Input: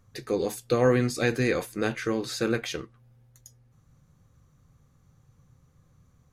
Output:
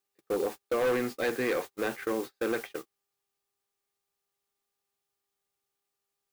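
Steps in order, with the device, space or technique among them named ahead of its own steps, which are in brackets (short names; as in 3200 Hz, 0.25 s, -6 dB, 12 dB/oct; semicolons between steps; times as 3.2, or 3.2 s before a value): aircraft radio (BPF 320–2500 Hz; hard clip -23.5 dBFS, distortion -10 dB; buzz 400 Hz, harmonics 3, -56 dBFS -2 dB/oct; white noise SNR 13 dB; gate -35 dBFS, range -38 dB)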